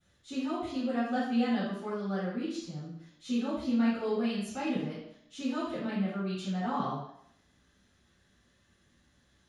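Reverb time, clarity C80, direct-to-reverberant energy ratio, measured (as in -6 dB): 0.70 s, 4.0 dB, -16.0 dB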